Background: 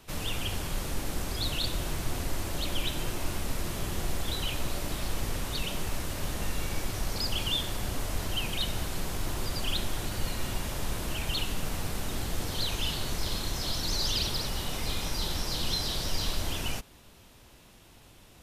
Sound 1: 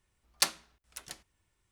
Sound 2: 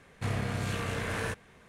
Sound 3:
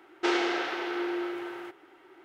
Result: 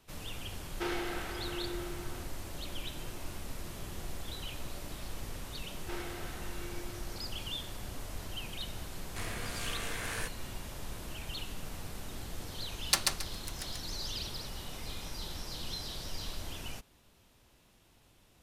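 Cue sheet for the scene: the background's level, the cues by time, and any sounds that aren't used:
background -9.5 dB
0.57 add 3 -9.5 dB
5.65 add 3 -16.5 dB
8.94 add 2 -6 dB + tilt +3 dB/oct
12.51 add 1 -1 dB + feedback echo 0.136 s, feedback 26%, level -3 dB

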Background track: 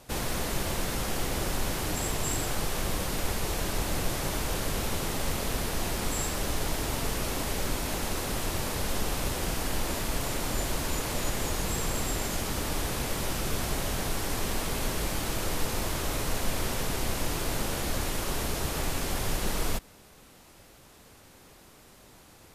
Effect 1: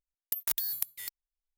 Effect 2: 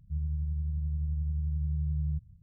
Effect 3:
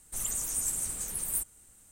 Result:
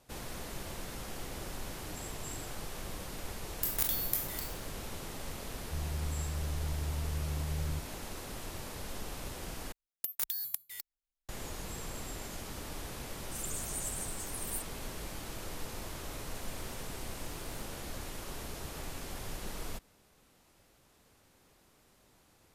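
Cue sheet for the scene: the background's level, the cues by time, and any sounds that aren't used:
background track -11.5 dB
3.31 add 1 -3 dB + spectral trails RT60 0.51 s
5.61 add 2 -5 dB
9.72 replace with 1 -4 dB
13.19 add 3 -8 dB
16.23 add 3 -13.5 dB + compressor, threshold -42 dBFS

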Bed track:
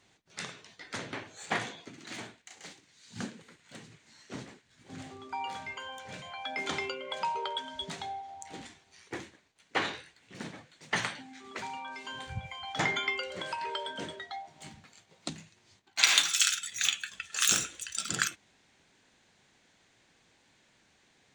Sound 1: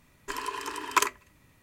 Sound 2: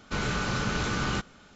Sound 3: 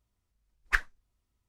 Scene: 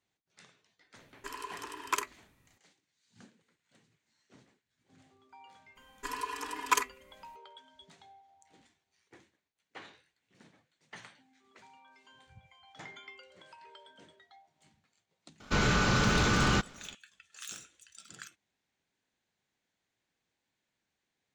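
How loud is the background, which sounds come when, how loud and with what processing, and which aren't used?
bed track -18.5 dB
0.96 add 1 -8 dB
5.75 add 1 -6.5 dB, fades 0.02 s + comb 4.1 ms, depth 90%
15.4 add 2 -0.5 dB + sample leveller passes 1
not used: 3

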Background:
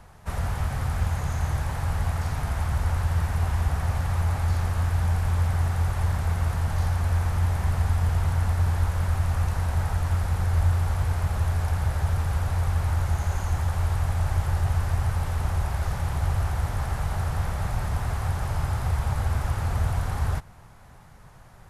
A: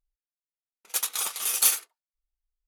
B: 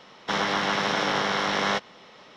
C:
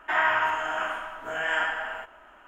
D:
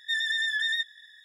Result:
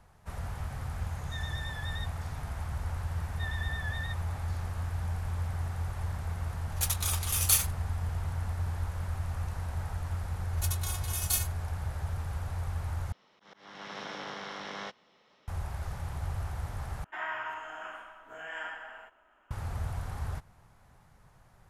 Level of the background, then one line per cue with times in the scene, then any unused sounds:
background -10 dB
1.23 add D -15 dB
3.31 add D -8.5 dB + Bessel low-pass 1900 Hz
5.87 add A -3.5 dB
9.68 add A -6.5 dB + robotiser 363 Hz
13.12 replace with B -15.5 dB + auto swell 0.454 s
17.04 replace with C -13 dB

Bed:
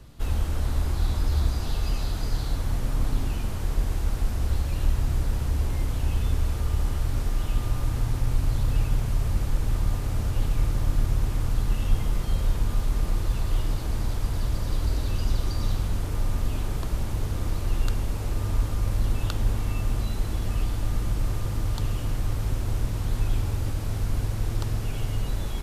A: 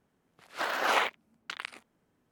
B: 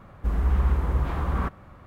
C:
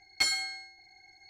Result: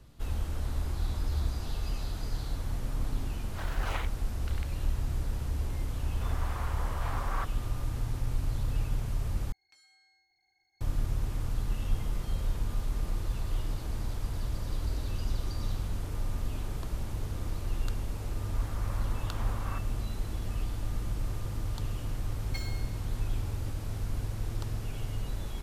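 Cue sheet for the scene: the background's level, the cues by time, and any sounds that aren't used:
bed -7 dB
2.98 add A -11.5 dB
5.96 add B -3 dB + HPF 560 Hz 24 dB/oct
9.52 replace with C -17.5 dB + compressor 3:1, threshold -48 dBFS
18.3 add B -9 dB + elliptic high-pass 520 Hz
22.34 add C -14.5 dB + median filter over 5 samples

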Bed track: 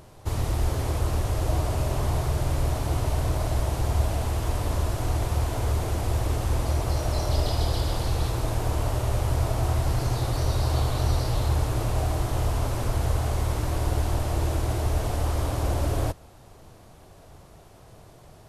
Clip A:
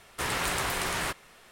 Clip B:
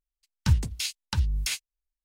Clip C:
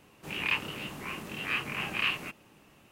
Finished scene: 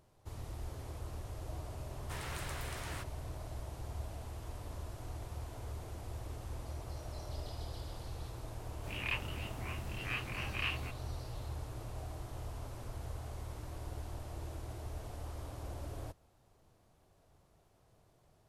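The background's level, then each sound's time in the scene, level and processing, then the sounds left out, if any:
bed track -18.5 dB
1.91 add A -15 dB
8.6 add C -8 dB
not used: B

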